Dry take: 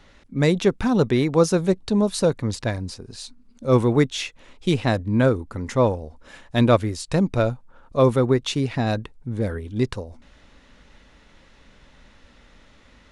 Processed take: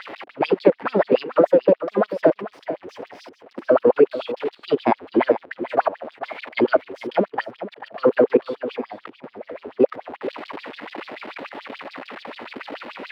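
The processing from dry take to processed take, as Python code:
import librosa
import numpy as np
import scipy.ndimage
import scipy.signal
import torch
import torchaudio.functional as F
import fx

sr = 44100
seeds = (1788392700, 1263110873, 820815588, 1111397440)

p1 = x + 0.5 * 10.0 ** (-25.0 / 20.0) * np.sign(x)
p2 = scipy.signal.sosfilt(scipy.signal.butter(2, 75.0, 'highpass', fs=sr, output='sos'), p1)
p3 = fx.high_shelf(p2, sr, hz=4300.0, db=-4.5)
p4 = fx.level_steps(p3, sr, step_db=18)
p5 = fx.filter_lfo_highpass(p4, sr, shape='sine', hz=6.9, low_hz=270.0, high_hz=3900.0, q=5.2)
p6 = fx.formant_shift(p5, sr, semitones=4)
p7 = fx.air_absorb(p6, sr, metres=450.0)
p8 = p7 + fx.echo_single(p7, sr, ms=440, db=-12.5, dry=0)
y = F.gain(torch.from_numpy(p8), 1.5).numpy()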